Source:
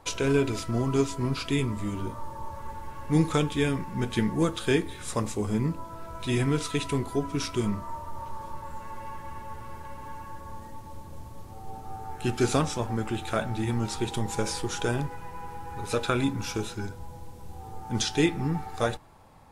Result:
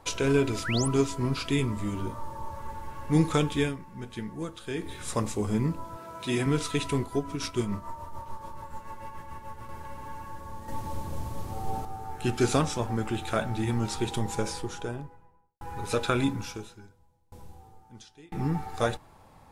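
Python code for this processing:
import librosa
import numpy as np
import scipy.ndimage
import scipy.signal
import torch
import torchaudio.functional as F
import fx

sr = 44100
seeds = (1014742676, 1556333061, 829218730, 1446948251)

y = fx.spec_paint(x, sr, seeds[0], shape='rise', start_s=0.64, length_s=0.24, low_hz=1200.0, high_hz=11000.0, level_db=-33.0)
y = fx.highpass(y, sr, hz=160.0, slope=12, at=(5.97, 6.46))
y = fx.tremolo(y, sr, hz=6.9, depth=0.53, at=(7.02, 9.69))
y = fx.studio_fade_out(y, sr, start_s=14.11, length_s=1.5)
y = fx.tremolo_decay(y, sr, direction='decaying', hz=1.0, depth_db=32, at=(16.32, 18.35))
y = fx.edit(y, sr, fx.fade_down_up(start_s=3.6, length_s=1.31, db=-10.5, fade_s=0.16),
    fx.clip_gain(start_s=10.68, length_s=1.17, db=8.0), tone=tone)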